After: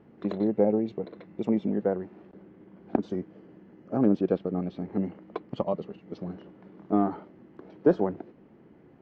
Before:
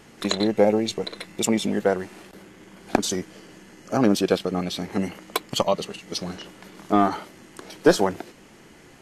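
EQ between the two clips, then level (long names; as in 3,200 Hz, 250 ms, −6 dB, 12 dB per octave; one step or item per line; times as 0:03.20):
resonant band-pass 290 Hz, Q 0.5
high-frequency loss of the air 180 metres
low-shelf EQ 410 Hz +4.5 dB
−5.5 dB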